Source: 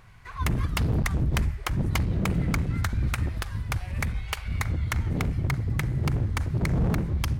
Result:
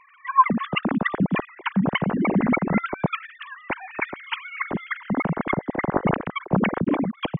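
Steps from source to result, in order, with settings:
three sine waves on the formant tracks
level +1.5 dB

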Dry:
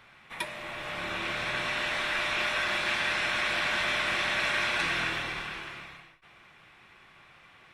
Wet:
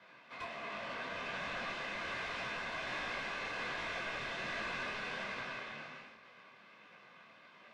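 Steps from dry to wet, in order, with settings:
lower of the sound and its delayed copy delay 2 ms
high-pass filter 150 Hz 6 dB per octave
high-shelf EQ 5,700 Hz +5 dB
notch filter 360 Hz, Q 12
frequency shifter +80 Hz
soft clipping −35.5 dBFS, distortion −7 dB
head-to-tape spacing loss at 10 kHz 30 dB
dense smooth reverb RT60 2 s, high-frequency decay 0.95×, DRR 6.5 dB
micro pitch shift up and down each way 45 cents
level +6.5 dB

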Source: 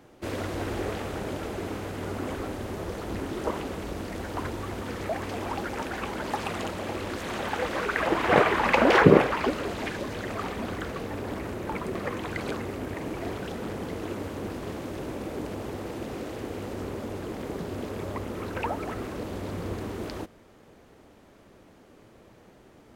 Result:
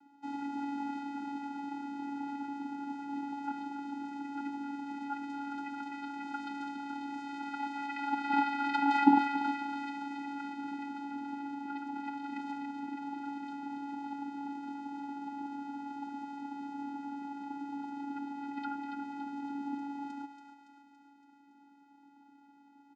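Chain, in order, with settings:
feedback echo with a high-pass in the loop 282 ms, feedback 59%, high-pass 460 Hz, level −6.5 dB
frequency shifter +240 Hz
comb filter 5.5 ms, depth 35%
channel vocoder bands 8, square 282 Hz
level −7.5 dB

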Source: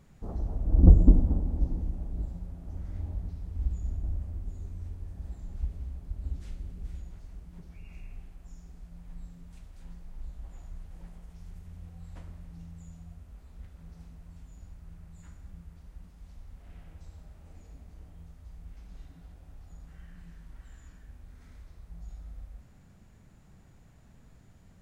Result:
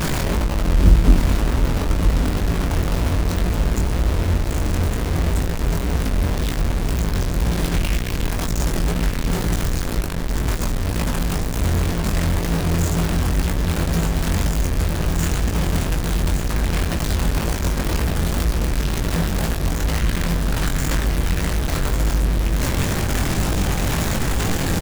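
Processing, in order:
converter with a step at zero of −16 dBFS
notch filter 790 Hz, Q 26
bit-depth reduction 6 bits, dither none
chorus effect 2 Hz, delay 17.5 ms, depth 6.7 ms
on a send: single-tap delay 1,158 ms −8 dB
on the sum: level +4 dB

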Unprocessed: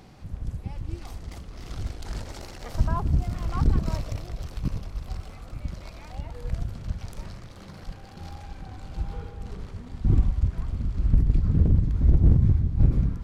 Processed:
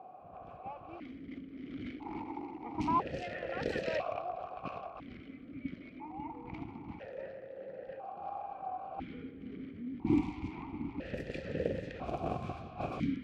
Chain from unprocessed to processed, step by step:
low-pass that shuts in the quiet parts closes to 640 Hz, open at −14 dBFS
spectral tilt +3 dB per octave
formant filter that steps through the vowels 1 Hz
level +17 dB

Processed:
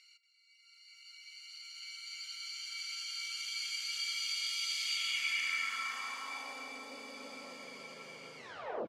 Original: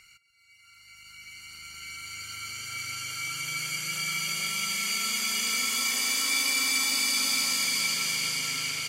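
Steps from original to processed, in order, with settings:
turntable brake at the end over 0.52 s
band-pass filter sweep 4,000 Hz → 520 Hz, 0:04.81–0:06.83
single-tap delay 234 ms −13.5 dB

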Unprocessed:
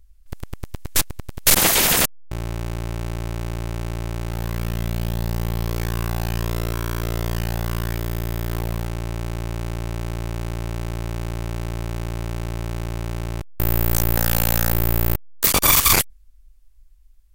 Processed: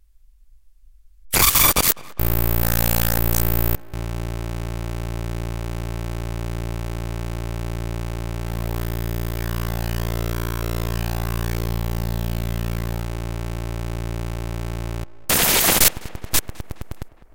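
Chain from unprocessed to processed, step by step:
played backwards from end to start
tape delay 207 ms, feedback 74%, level −19 dB, low-pass 2,800 Hz

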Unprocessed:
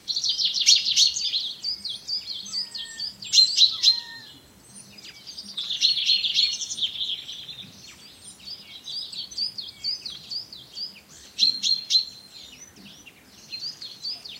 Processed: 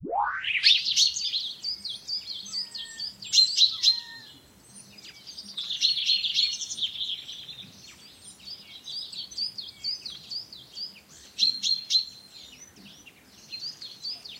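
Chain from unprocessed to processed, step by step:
turntable start at the beginning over 0.86 s
dynamic equaliser 510 Hz, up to −4 dB, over −44 dBFS, Q 0.89
level −3 dB

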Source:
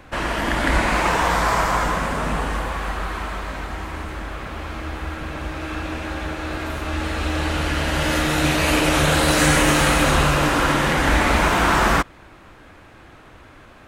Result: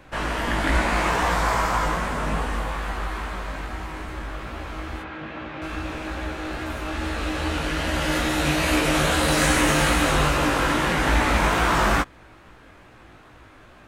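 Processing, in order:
0:05.02–0:05.62: Chebyshev band-pass filter 140–3,000 Hz, order 2
chorus effect 2.4 Hz, delay 16 ms, depth 3.3 ms

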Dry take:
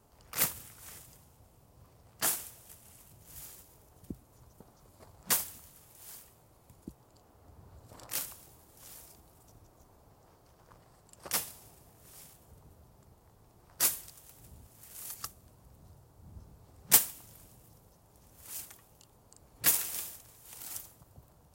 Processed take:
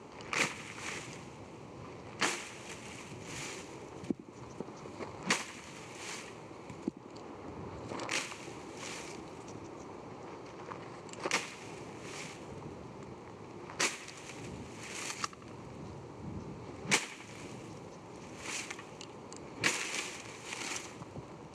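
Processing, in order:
loudspeaker in its box 190–5,800 Hz, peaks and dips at 350 Hz +4 dB, 680 Hz −9 dB, 1,500 Hz −6 dB, 2,300 Hz +6 dB, 3,500 Hz −6 dB, 5,100 Hz −9 dB
bucket-brigade delay 90 ms, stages 2,048, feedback 42%, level −17.5 dB
downward compressor 2 to 1, threshold −56 dBFS, peak gain reduction 16 dB
level +18 dB

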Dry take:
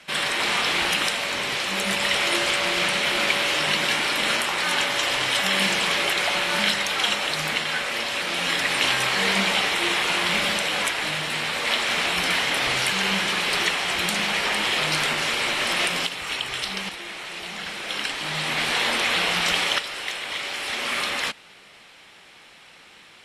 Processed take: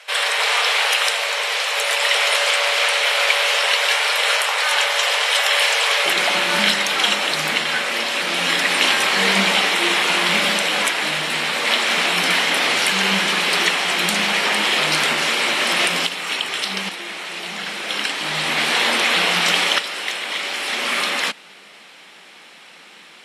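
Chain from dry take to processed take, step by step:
linear-phase brick-wall high-pass 410 Hz, from 0:06.05 150 Hz
level +5 dB

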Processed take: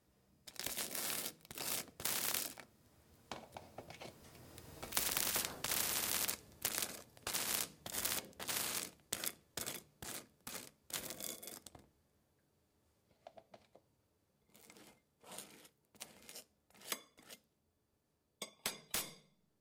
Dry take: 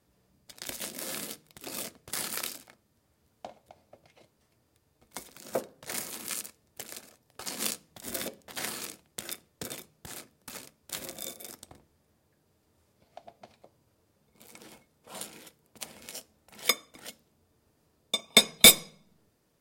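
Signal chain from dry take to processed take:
source passing by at 0:05.15, 13 m/s, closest 2 metres
every bin compressed towards the loudest bin 10 to 1
level +9.5 dB

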